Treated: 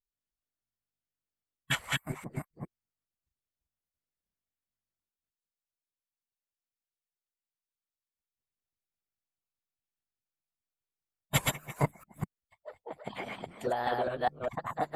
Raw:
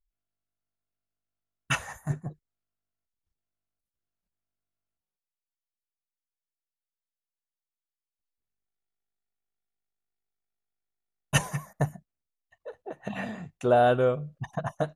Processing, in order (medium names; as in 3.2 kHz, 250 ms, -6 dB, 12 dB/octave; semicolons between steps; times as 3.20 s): chunks repeated in reverse 204 ms, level -1 dB; formant shift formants +3 st; harmonic-percussive split harmonic -15 dB; trim -2.5 dB